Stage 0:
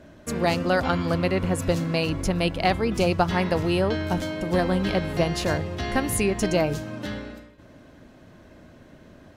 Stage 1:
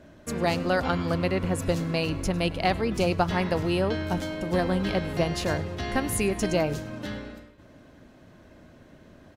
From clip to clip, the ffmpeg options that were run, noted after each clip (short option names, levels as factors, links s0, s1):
-filter_complex "[0:a]asplit=5[s0][s1][s2][s3][s4];[s1]adelay=103,afreqshift=-78,volume=0.0944[s5];[s2]adelay=206,afreqshift=-156,volume=0.0484[s6];[s3]adelay=309,afreqshift=-234,volume=0.0245[s7];[s4]adelay=412,afreqshift=-312,volume=0.0126[s8];[s0][s5][s6][s7][s8]amix=inputs=5:normalize=0,volume=0.75"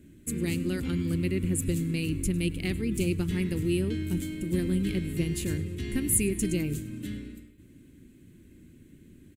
-af "firequalizer=gain_entry='entry(350,0);entry(650,-29);entry(2200,-4);entry(5400,-11);entry(7800,7)':delay=0.05:min_phase=1"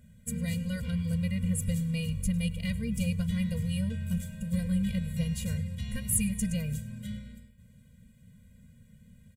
-af "afftfilt=real='re*eq(mod(floor(b*sr/1024/230),2),0)':imag='im*eq(mod(floor(b*sr/1024/230),2),0)':win_size=1024:overlap=0.75"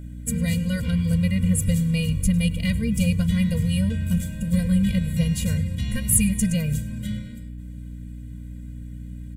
-af "aeval=exprs='val(0)+0.00708*(sin(2*PI*60*n/s)+sin(2*PI*2*60*n/s)/2+sin(2*PI*3*60*n/s)/3+sin(2*PI*4*60*n/s)/4+sin(2*PI*5*60*n/s)/5)':c=same,volume=2.66"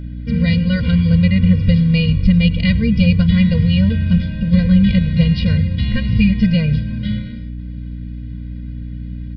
-af "equalizer=f=720:t=o:w=0.77:g=-3,aresample=11025,aresample=44100,volume=2.66"